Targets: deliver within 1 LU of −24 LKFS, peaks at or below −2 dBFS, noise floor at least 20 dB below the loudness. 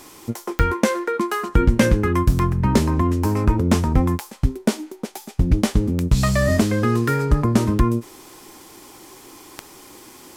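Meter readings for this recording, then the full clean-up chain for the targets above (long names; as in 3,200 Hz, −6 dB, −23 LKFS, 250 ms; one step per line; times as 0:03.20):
number of clicks 6; integrated loudness −20.0 LKFS; sample peak −3.0 dBFS; target loudness −24.0 LKFS
→ click removal
level −4 dB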